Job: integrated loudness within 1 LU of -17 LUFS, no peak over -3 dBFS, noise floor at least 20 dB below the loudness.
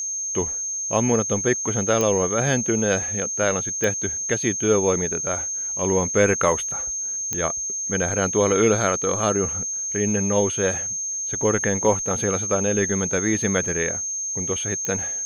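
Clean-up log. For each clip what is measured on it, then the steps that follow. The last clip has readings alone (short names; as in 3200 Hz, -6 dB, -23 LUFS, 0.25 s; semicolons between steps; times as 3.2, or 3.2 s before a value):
clicks 4; steady tone 6400 Hz; tone level -25 dBFS; loudness -21.5 LUFS; peak -4.0 dBFS; loudness target -17.0 LUFS
-> de-click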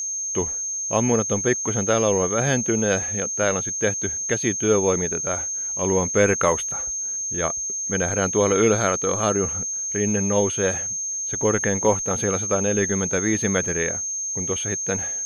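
clicks 0; steady tone 6400 Hz; tone level -25 dBFS
-> notch 6400 Hz, Q 30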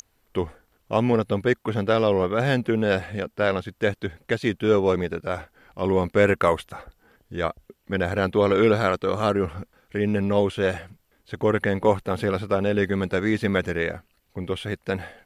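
steady tone none; loudness -24.0 LUFS; peak -5.0 dBFS; loudness target -17.0 LUFS
-> gain +7 dB; limiter -3 dBFS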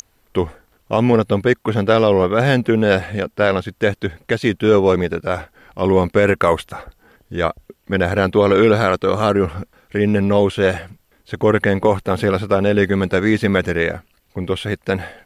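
loudness -17.5 LUFS; peak -3.0 dBFS; noise floor -60 dBFS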